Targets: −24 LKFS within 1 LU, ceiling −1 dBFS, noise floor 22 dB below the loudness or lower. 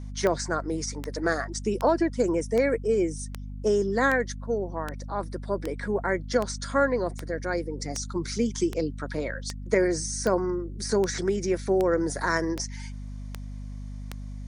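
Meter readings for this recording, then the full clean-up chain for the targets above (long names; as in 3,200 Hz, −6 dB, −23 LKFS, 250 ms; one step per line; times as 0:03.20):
number of clicks 19; mains hum 50 Hz; hum harmonics up to 250 Hz; level of the hum −34 dBFS; integrated loudness −27.5 LKFS; sample peak −10.5 dBFS; target loudness −24.0 LKFS
→ click removal
mains-hum notches 50/100/150/200/250 Hz
level +3.5 dB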